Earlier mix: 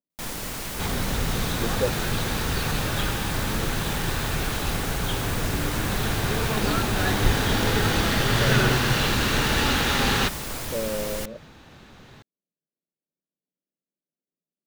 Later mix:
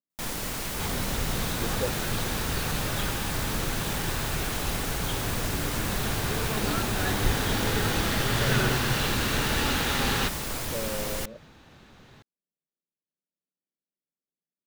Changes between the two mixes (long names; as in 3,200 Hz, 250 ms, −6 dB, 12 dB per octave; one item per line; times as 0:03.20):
speech −5.5 dB
second sound −4.5 dB